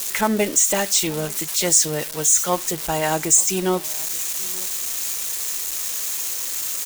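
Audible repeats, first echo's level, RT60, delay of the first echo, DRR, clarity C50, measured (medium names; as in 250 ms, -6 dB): 1, -23.0 dB, no reverb, 880 ms, no reverb, no reverb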